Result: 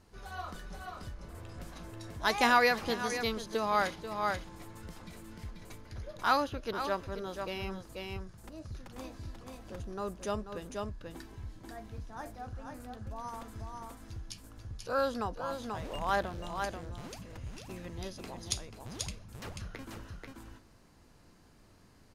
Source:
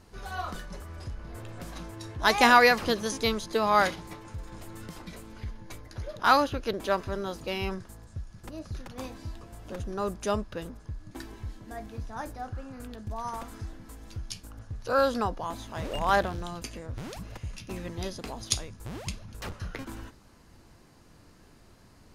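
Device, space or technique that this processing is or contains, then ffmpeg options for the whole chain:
ducked delay: -filter_complex "[0:a]asplit=3[link_01][link_02][link_03];[link_02]adelay=487,volume=-3dB[link_04];[link_03]apad=whole_len=998133[link_05];[link_04][link_05]sidechaincompress=threshold=-35dB:ratio=4:attack=9.3:release=297[link_06];[link_01][link_06]amix=inputs=2:normalize=0,volume=-6.5dB"

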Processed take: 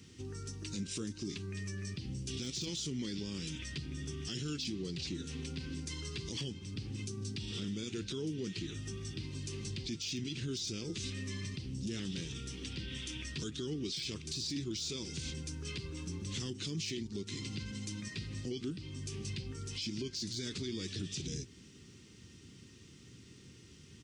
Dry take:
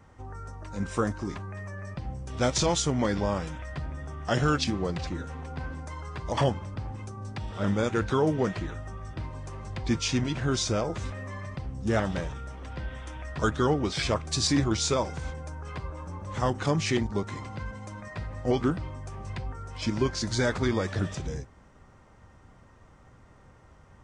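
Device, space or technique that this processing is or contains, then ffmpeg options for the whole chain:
broadcast voice chain: -af "highpass=120,firequalizer=gain_entry='entry(390,0);entry(610,-27);entry(2700,5)':delay=0.05:min_phase=1,deesser=0.65,acompressor=threshold=-40dB:ratio=4,equalizer=frequency=4600:width_type=o:width=1:gain=6,alimiter=level_in=9.5dB:limit=-24dB:level=0:latency=1:release=14,volume=-9.5dB,volume=3.5dB"

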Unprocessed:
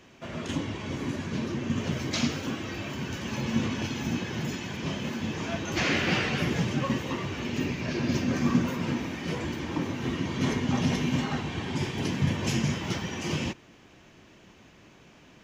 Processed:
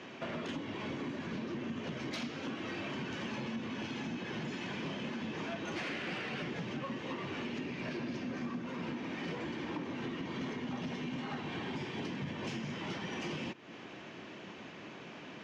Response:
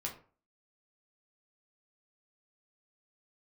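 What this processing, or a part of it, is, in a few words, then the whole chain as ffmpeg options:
AM radio: -af "highpass=180,lowpass=4000,acompressor=threshold=-43dB:ratio=8,asoftclip=type=tanh:threshold=-38dB,volume=7.5dB"

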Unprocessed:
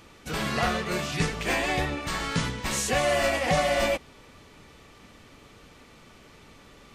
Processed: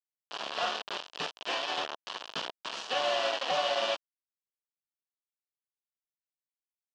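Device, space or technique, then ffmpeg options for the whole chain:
hand-held game console: -af "acrusher=bits=3:mix=0:aa=0.000001,highpass=460,equalizer=frequency=670:width_type=q:width=4:gain=3,equalizer=frequency=1000:width_type=q:width=4:gain=4,equalizer=frequency=2100:width_type=q:width=4:gain=-10,equalizer=frequency=3000:width_type=q:width=4:gain=7,lowpass=frequency=5000:width=0.5412,lowpass=frequency=5000:width=1.3066,volume=-6.5dB"

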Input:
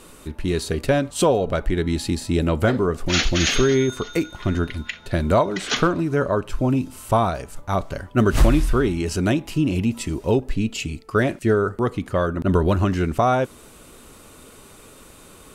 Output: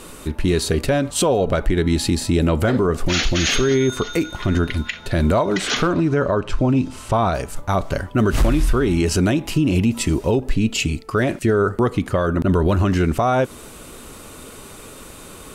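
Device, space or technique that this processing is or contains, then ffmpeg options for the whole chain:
clipper into limiter: -filter_complex "[0:a]asettb=1/sr,asplit=3[link_01][link_02][link_03];[link_01]atrim=end=5.944[link_04];[link_02]atrim=start=5.94:end=7.33,asetpts=PTS-STARTPTS,afade=type=in:duration=0.004:curve=qsin,afade=type=out:start_time=1.386:duration=0.004:curve=qsin,lowpass=6300[link_05];[link_03]atrim=start=7.326[link_06];[link_04][link_05]acrossfade=duration=0.004:curve1=hsin:curve2=qsin[link_07];[link_07][link_06]acrossfade=duration=0.004:curve1=qsin:curve2=hsin,asoftclip=type=hard:threshold=-8.5dB,alimiter=limit=-16.5dB:level=0:latency=1:release=92,volume=7dB"

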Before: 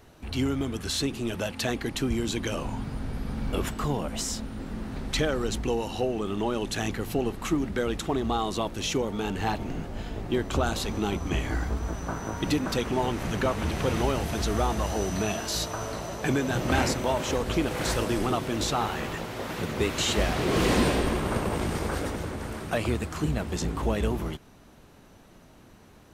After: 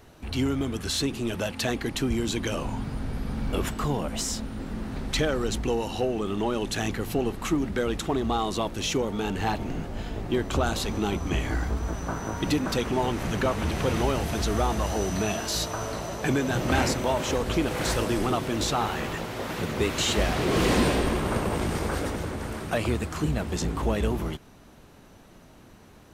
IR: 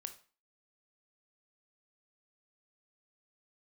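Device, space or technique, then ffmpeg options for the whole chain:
parallel distortion: -filter_complex "[0:a]asplit=2[link_01][link_02];[link_02]asoftclip=type=hard:threshold=-28dB,volume=-13.5dB[link_03];[link_01][link_03]amix=inputs=2:normalize=0"

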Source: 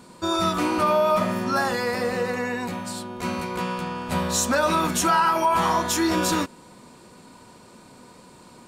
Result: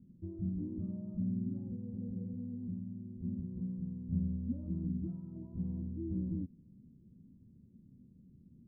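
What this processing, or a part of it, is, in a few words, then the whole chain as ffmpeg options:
the neighbour's flat through the wall: -af "lowpass=frequency=220:width=0.5412,lowpass=frequency=220:width=1.3066,equalizer=frequency=82:width_type=o:width=0.77:gain=3,volume=-5dB"

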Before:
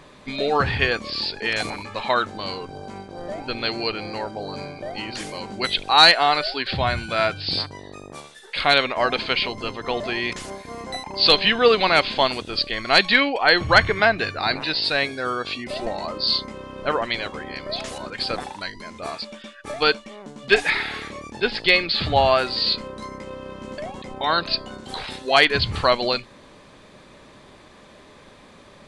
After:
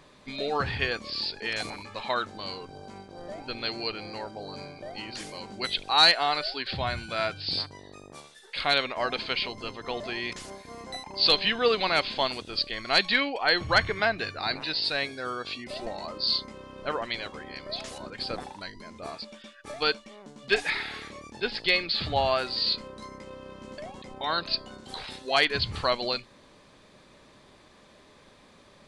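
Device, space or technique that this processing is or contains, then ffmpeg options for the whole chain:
presence and air boost: -filter_complex "[0:a]equalizer=frequency=4800:width_type=o:width=0.87:gain=3,highshelf=frequency=9700:gain=3.5,asettb=1/sr,asplit=3[link_01][link_02][link_03];[link_01]atrim=end=17.994[link_04];[link_02]atrim=start=17.99:end=19.28,asetpts=PTS-STARTPTS,afade=type=in:duration=0.004:curve=qsin,afade=type=out:start_time=1.286:duration=0.004:curve=qsin,tiltshelf=frequency=970:gain=3[link_05];[link_03]atrim=start=19.276[link_06];[link_04][link_05]acrossfade=duration=0.004:curve1=hsin:curve2=qsin[link_07];[link_07][link_06]acrossfade=duration=0.004:curve1=qsin:curve2=hsin,volume=-8dB"

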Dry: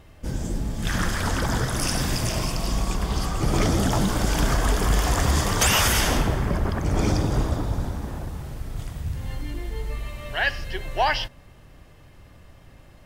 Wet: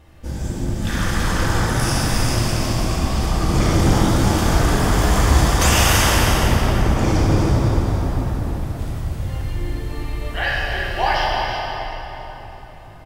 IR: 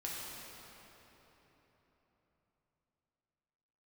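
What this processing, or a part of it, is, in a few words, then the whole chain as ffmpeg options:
cave: -filter_complex "[0:a]aecho=1:1:331:0.376[link_01];[1:a]atrim=start_sample=2205[link_02];[link_01][link_02]afir=irnorm=-1:irlink=0,volume=3dB"

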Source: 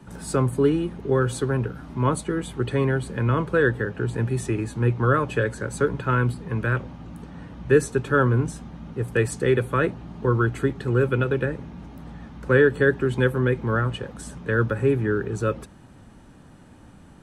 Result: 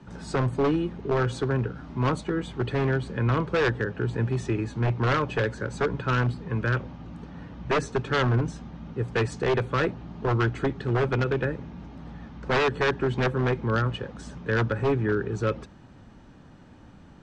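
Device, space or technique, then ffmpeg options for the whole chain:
synthesiser wavefolder: -af "aeval=exprs='0.168*(abs(mod(val(0)/0.168+3,4)-2)-1)':channel_layout=same,lowpass=frequency=6300:width=0.5412,lowpass=frequency=6300:width=1.3066,volume=-1.5dB"

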